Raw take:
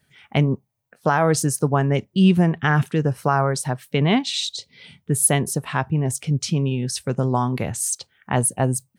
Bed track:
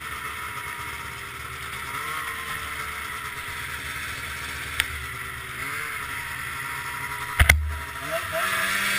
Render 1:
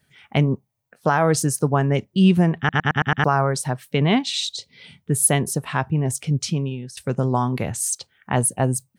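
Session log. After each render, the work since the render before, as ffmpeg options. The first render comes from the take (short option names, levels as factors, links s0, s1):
-filter_complex "[0:a]asplit=8[s0][s1][s2][s3][s4][s5][s6][s7];[s0]atrim=end=2.692[s8];[s1]atrim=start=2.578:end=2.692[s9];[s2]atrim=start=2.578:end=2.692[s10];[s3]atrim=start=2.578:end=2.692[s11];[s4]atrim=start=2.578:end=2.692[s12];[s5]atrim=start=2.578:end=2.692[s13];[s6]atrim=start=3.238:end=6.97,asetpts=PTS-STARTPTS,afade=t=out:st=3.202:d=0.53:silence=0.141254[s14];[s7]atrim=start=6.97,asetpts=PTS-STARTPTS,afade=t=in:d=0.004:c=hsin:silence=0.141254[s15];[s8][s9]acrossfade=d=0.004:c1=hsin:c2=hsin[s16];[s16][s10]acrossfade=d=0.004:c1=hsin:c2=hsin[s17];[s17][s11]acrossfade=d=0.004:c1=hsin:c2=hsin[s18];[s18][s12]acrossfade=d=0.004:c1=hsin:c2=hsin[s19];[s19][s13]acrossfade=d=0.004:c1=hsin:c2=hsin[s20];[s14][s15]concat=n=2:v=0:a=1[s21];[s20][s21]acrossfade=d=0.004:c1=hsin:c2=hsin"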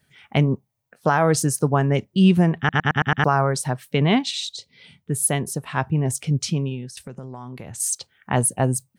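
-filter_complex "[0:a]asettb=1/sr,asplit=3[s0][s1][s2];[s0]atrim=end=6.914[s3];[s1]atrim=start=6.91:end=7.8,asetpts=PTS-STARTPTS,afade=t=in:d=0.004:c=qsin,afade=t=out:st=0.886:d=0.004:c=qsin,acompressor=threshold=0.0251:ratio=8:attack=3.2:release=140:knee=1:detection=peak[s4];[s2]atrim=start=7.796[s5];[s3][s4]acrossfade=d=0.004:c1=hsin:c2=qsin[s6];[s6][s5]acrossfade=d=0.004:c1=qsin:c2=hsin,asplit=3[s7][s8][s9];[s7]atrim=end=4.312[s10];[s8]atrim=start=4.308:end=5.772,asetpts=PTS-STARTPTS,volume=0.668[s11];[s9]atrim=start=5.768[s12];[s10][s11]acrossfade=d=0.004:c1=hsin:c2=hsin[s13];[s13][s12]acrossfade=d=0.004:c1=hsin:c2=hsin"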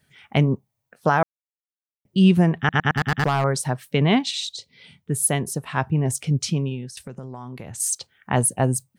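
-filter_complex "[0:a]asettb=1/sr,asplit=3[s0][s1][s2];[s0]atrim=end=2.944[s3];[s1]atrim=start=2.94:end=3.44,asetpts=PTS-STARTPTS,afade=t=in:d=0.004:c=qsin,afade=t=out:st=0.496:d=0.004:c=qsin,asoftclip=type=hard:threshold=0.168[s4];[s2]atrim=start=3.436[s5];[s3][s4]acrossfade=d=0.004:c1=hsin:c2=qsin[s6];[s6][s5]acrossfade=d=0.004:c1=qsin:c2=hsin,asplit=3[s7][s8][s9];[s7]atrim=end=1.23,asetpts=PTS-STARTPTS,afade=t=out:st=1.226:d=0.004:c=hsin[s10];[s8]atrim=start=1.23:end=2.05,asetpts=PTS-STARTPTS,volume=0[s11];[s9]atrim=start=2.05,asetpts=PTS-STARTPTS,afade=t=in:d=0.004:c=hsin[s12];[s10][s11][s12]concat=n=3:v=0:a=1"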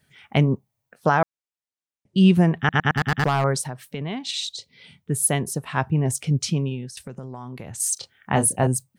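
-filter_complex "[0:a]asettb=1/sr,asplit=3[s0][s1][s2];[s0]atrim=end=1.094[s3];[s1]atrim=start=1.09:end=2.28,asetpts=PTS-STARTPTS,afade=t=in:d=0.004:c=qsin,afade=t=out:st=1.186:d=0.004:c=qsin,lowpass=f=9400:w=0.5412,lowpass=f=9400:w=1.3066[s4];[s2]atrim=start=2.276[s5];[s3][s4]acrossfade=d=0.004:c1=hsin:c2=qsin[s6];[s6][s5]acrossfade=d=0.004:c1=qsin:c2=hsin,asplit=3[s7][s8][s9];[s7]afade=t=out:st=3.63:d=0.02[s10];[s8]acompressor=threshold=0.0316:ratio=3:attack=3.2:release=140:knee=1:detection=peak,afade=t=in:st=3.63:d=0.02,afade=t=out:st=4.28:d=0.02[s11];[s9]afade=t=in:st=4.28:d=0.02[s12];[s10][s11][s12]amix=inputs=3:normalize=0,asettb=1/sr,asplit=3[s13][s14][s15];[s13]atrim=end=7.944[s16];[s14]atrim=start=7.94:end=8.67,asetpts=PTS-STARTPTS,afade=t=in:d=0.004:c=qsin,afade=t=out:st=0.726:d=0.004:c=qsin,asplit=2[s17][s18];[s18]adelay=28,volume=0.473[s19];[s17][s19]amix=inputs=2:normalize=0,atrim=end_sample=32193[s20];[s15]atrim=start=8.666[s21];[s16][s20]acrossfade=d=0.004:c1=hsin:c2=qsin[s22];[s22][s21]acrossfade=d=0.004:c1=qsin:c2=hsin"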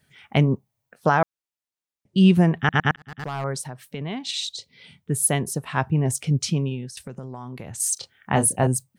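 -filter_complex "[0:a]asplit=2[s0][s1];[s0]atrim=end=2.96,asetpts=PTS-STARTPTS,afade=t=out:st=2.956:d=0.004:c=hsin[s2];[s1]atrim=start=2.96,asetpts=PTS-STARTPTS,afade=t=in:d=1.58:c=qsin[s3];[s2][s3]concat=n=2:v=0:a=1"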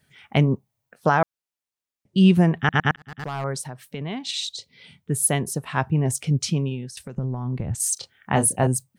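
-filter_complex "[0:a]asettb=1/sr,asplit=3[s0][s1][s2];[s0]atrim=end=7.174[s3];[s1]atrim=start=7.17:end=7.75,asetpts=PTS-STARTPTS,afade=t=in:d=0.004:c=qsin,afade=t=out:st=0.576:d=0.004:c=qsin,aemphasis=mode=reproduction:type=riaa[s4];[s2]atrim=start=7.746[s5];[s3][s4]acrossfade=d=0.004:c1=hsin:c2=qsin[s6];[s6][s5]acrossfade=d=0.004:c1=qsin:c2=hsin"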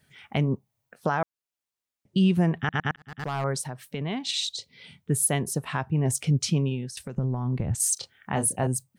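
-af "alimiter=limit=0.2:level=0:latency=1:release=417"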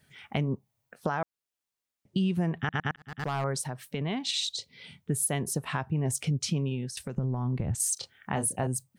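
-af "acompressor=threshold=0.0447:ratio=2.5"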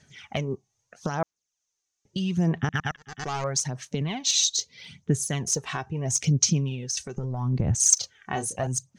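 -af "lowpass=f=6300:t=q:w=7.6,aphaser=in_gain=1:out_gain=1:delay=2.7:decay=0.52:speed=0.78:type=sinusoidal"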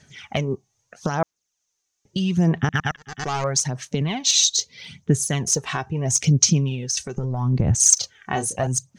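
-af "volume=1.78,alimiter=limit=0.891:level=0:latency=1"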